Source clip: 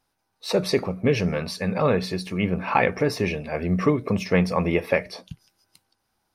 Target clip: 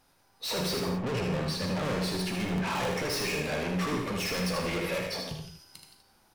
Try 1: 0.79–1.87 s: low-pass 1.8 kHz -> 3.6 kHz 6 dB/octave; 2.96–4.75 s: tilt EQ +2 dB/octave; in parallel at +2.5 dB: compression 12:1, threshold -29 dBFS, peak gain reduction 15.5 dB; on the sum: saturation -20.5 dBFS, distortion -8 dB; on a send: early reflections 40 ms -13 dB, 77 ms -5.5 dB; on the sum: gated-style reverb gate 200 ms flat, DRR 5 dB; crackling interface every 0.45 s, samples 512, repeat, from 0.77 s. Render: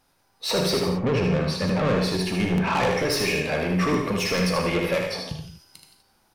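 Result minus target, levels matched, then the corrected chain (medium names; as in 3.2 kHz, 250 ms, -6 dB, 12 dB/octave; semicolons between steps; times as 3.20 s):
saturation: distortion -5 dB
0.79–1.87 s: low-pass 1.8 kHz -> 3.6 kHz 6 dB/octave; 2.96–4.75 s: tilt EQ +2 dB/octave; in parallel at +2.5 dB: compression 12:1, threshold -29 dBFS, peak gain reduction 15.5 dB; on the sum: saturation -31.5 dBFS, distortion -2 dB; on a send: early reflections 40 ms -13 dB, 77 ms -5.5 dB; on the sum: gated-style reverb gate 200 ms flat, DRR 5 dB; crackling interface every 0.45 s, samples 512, repeat, from 0.77 s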